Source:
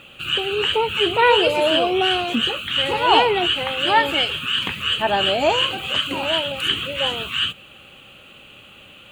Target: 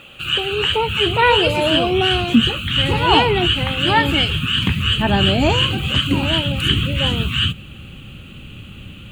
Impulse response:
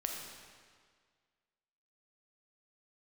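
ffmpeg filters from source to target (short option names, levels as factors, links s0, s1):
-af "asubboost=boost=11:cutoff=190,volume=1.33"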